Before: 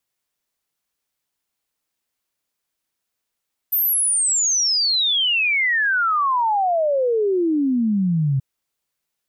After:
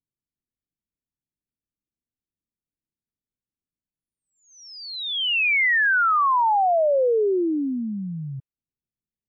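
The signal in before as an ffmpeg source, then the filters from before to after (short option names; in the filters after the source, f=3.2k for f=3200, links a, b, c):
-f lavfi -i "aevalsrc='0.158*clip(min(t,4.68-t)/0.01,0,1)*sin(2*PI*14000*4.68/log(130/14000)*(exp(log(130/14000)*t/4.68)-1))':d=4.68:s=44100"
-filter_complex "[0:a]lowpass=f=2.8k:w=0.5412,lowpass=f=2.8k:w=1.3066,acrossover=split=330[a][b];[a]acompressor=threshold=-33dB:ratio=6[c];[b]agate=range=-33dB:threshold=-46dB:ratio=3:detection=peak[d];[c][d]amix=inputs=2:normalize=0"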